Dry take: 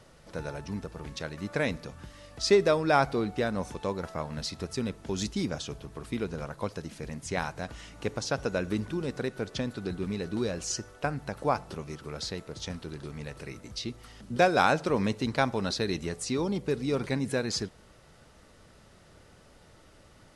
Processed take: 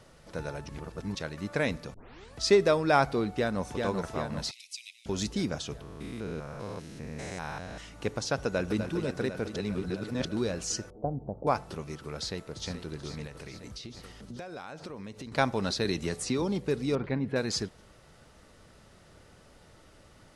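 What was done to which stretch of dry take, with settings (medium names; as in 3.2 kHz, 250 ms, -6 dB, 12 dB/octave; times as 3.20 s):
0.69–1.15 s: reverse
1.94 s: tape start 0.41 s
3.31–3.77 s: echo throw 390 ms, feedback 60%, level -4 dB
4.51–5.06 s: steep high-pass 2.2 kHz 96 dB/octave
5.81–7.78 s: spectrogram pixelated in time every 200 ms
8.34–8.79 s: echo throw 250 ms, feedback 80%, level -8.5 dB
9.56–10.25 s: reverse
10.90–11.47 s: steep low-pass 790 Hz
12.18–12.71 s: echo throw 430 ms, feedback 80%, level -10.5 dB
13.26–15.32 s: compression 10:1, threshold -38 dBFS
15.85–16.42 s: three bands compressed up and down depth 70%
16.95–17.36 s: distance through air 380 m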